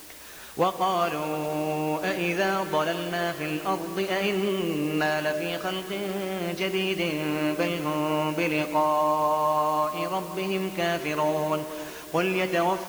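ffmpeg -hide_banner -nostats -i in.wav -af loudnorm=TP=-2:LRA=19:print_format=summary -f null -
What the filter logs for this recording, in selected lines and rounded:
Input Integrated:    -26.7 LUFS
Input True Peak:     -11.7 dBTP
Input LRA:             2.1 LU
Input Threshold:     -36.8 LUFS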